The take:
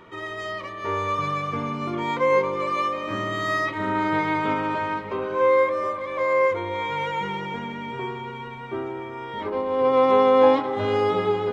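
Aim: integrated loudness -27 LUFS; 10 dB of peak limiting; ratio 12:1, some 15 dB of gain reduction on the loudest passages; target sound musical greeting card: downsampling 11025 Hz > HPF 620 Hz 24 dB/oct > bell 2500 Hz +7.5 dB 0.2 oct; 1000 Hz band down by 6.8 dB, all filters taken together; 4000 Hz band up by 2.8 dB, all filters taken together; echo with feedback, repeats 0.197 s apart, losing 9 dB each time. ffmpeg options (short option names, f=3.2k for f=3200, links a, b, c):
-af "equalizer=f=1k:t=o:g=-8,equalizer=f=4k:t=o:g=3.5,acompressor=threshold=-29dB:ratio=12,alimiter=level_in=7.5dB:limit=-24dB:level=0:latency=1,volume=-7.5dB,aecho=1:1:197|394|591|788:0.355|0.124|0.0435|0.0152,aresample=11025,aresample=44100,highpass=f=620:w=0.5412,highpass=f=620:w=1.3066,equalizer=f=2.5k:t=o:w=0.2:g=7.5,volume=13.5dB"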